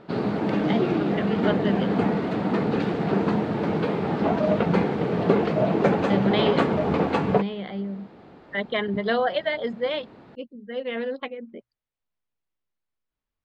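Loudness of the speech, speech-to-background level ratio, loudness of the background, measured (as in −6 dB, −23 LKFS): −28.5 LKFS, −5.0 dB, −23.5 LKFS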